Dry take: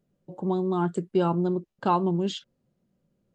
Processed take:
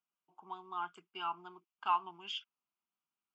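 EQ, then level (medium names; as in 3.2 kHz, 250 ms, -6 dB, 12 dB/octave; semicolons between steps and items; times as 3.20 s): dynamic bell 2.6 kHz, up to +6 dB, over -46 dBFS, Q 0.89; Butterworth band-pass 1.9 kHz, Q 0.6; static phaser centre 2.7 kHz, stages 8; -4.5 dB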